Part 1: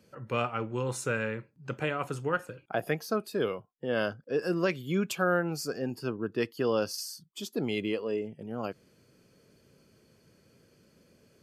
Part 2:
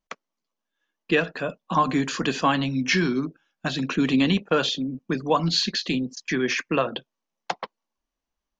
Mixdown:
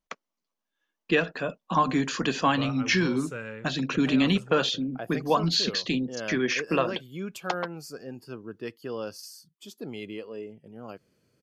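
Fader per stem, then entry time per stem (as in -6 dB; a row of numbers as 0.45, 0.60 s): -6.5, -2.0 dB; 2.25, 0.00 s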